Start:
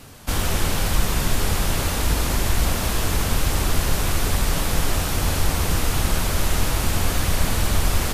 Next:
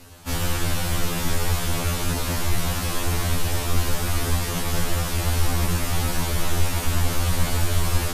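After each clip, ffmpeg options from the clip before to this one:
-af "afftfilt=real='re*2*eq(mod(b,4),0)':imag='im*2*eq(mod(b,4),0)':win_size=2048:overlap=0.75"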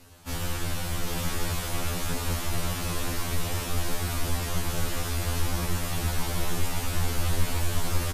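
-af "aecho=1:1:796:0.668,volume=-6.5dB"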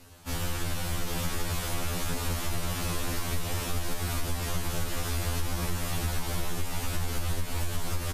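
-af "acompressor=threshold=-24dB:ratio=6"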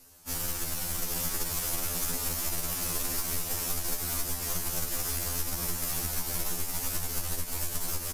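-af "equalizer=f=110:w=3.3:g=-14.5,aexciter=amount=3.5:drive=3.5:freq=4.9k,aeval=exprs='0.211*(cos(1*acos(clip(val(0)/0.211,-1,1)))-cos(1*PI/2))+0.0211*(cos(3*acos(clip(val(0)/0.211,-1,1)))-cos(3*PI/2))+0.0075*(cos(7*acos(clip(val(0)/0.211,-1,1)))-cos(7*PI/2))':c=same,volume=-1dB"

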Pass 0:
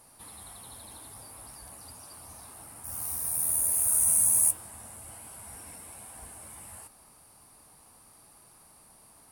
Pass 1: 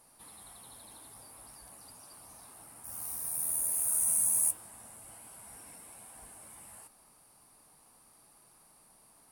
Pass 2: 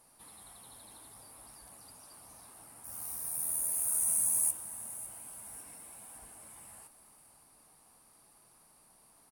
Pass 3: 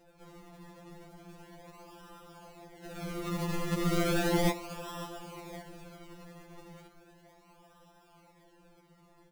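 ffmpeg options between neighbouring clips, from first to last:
-af "equalizer=f=79:t=o:w=0.67:g=-10.5,volume=-5dB"
-af "aecho=1:1:557|1114|1671|2228|2785:0.178|0.0925|0.0481|0.025|0.013,volume=-1.5dB"
-filter_complex "[0:a]acrossover=split=2000[a][b];[a]asuperstop=centerf=1200:order=4:qfactor=3.4[c];[b]acrusher=samples=39:mix=1:aa=0.000001:lfo=1:lforange=39:lforate=0.35[d];[c][d]amix=inputs=2:normalize=0,afftfilt=real='re*2.83*eq(mod(b,8),0)':imag='im*2.83*eq(mod(b,8),0)':win_size=2048:overlap=0.75,volume=5dB"

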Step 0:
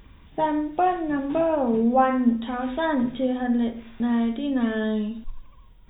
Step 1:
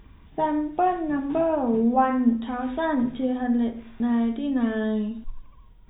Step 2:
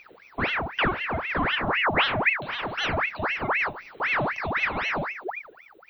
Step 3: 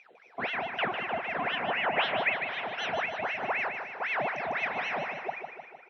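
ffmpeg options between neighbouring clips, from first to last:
-af "highshelf=f=2.5k:g=-7.5,bandreject=f=540:w=12"
-af "crystalizer=i=2:c=0,aeval=exprs='val(0)*sin(2*PI*1400*n/s+1400*0.75/3.9*sin(2*PI*3.9*n/s))':c=same"
-af "highpass=220,equalizer=f=310:t=q:w=4:g=-8,equalizer=f=720:t=q:w=4:g=7,equalizer=f=1.2k:t=q:w=4:g=-5,equalizer=f=4.6k:t=q:w=4:g=-8,equalizer=f=6.9k:t=q:w=4:g=5,lowpass=f=9.5k:w=0.5412,lowpass=f=9.5k:w=1.3066,aecho=1:1:152|304|456|608|760|912|1064:0.447|0.259|0.15|0.0872|0.0505|0.0293|0.017,volume=-6dB"

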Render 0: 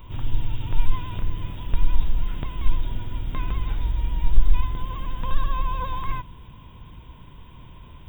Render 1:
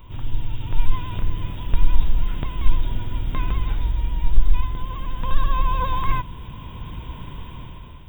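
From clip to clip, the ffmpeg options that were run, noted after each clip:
-af "dynaudnorm=f=230:g=7:m=12dB,volume=-1dB"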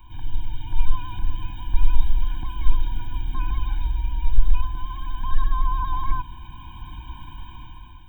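-filter_complex "[0:a]equalizer=f=160:w=0.75:g=-10.5,acrossover=split=130|1100[a][b][c];[c]alimiter=level_in=9.5dB:limit=-24dB:level=0:latency=1:release=35,volume=-9.5dB[d];[a][b][d]amix=inputs=3:normalize=0,afftfilt=real='re*eq(mod(floor(b*sr/1024/360),2),0)':imag='im*eq(mod(floor(b*sr/1024/360),2),0)':win_size=1024:overlap=0.75"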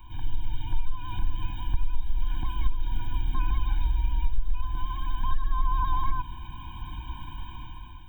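-af "acompressor=threshold=-17dB:ratio=10"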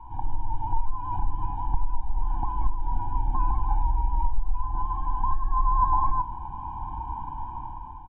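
-filter_complex "[0:a]lowpass=f=860:t=q:w=10,asplit=2[a][b];[b]adelay=31,volume=-12.5dB[c];[a][c]amix=inputs=2:normalize=0"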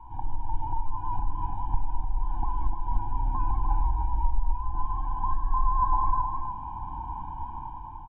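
-af "aecho=1:1:301:0.501,volume=-2.5dB"

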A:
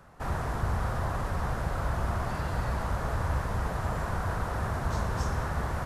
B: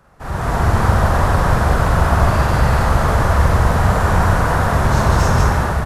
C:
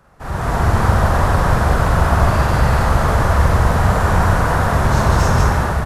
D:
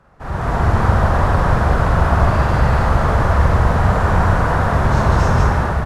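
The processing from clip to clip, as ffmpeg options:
-af "dynaudnorm=f=110:g=7:m=11.5dB,aeval=exprs='0.355*(abs(mod(val(0)/0.355+3,4)-2)-1)':c=same,aecho=1:1:43.73|128.3|195.3:0.794|0.355|0.891,volume=1dB"
-af anull
-af "aemphasis=mode=reproduction:type=50kf"

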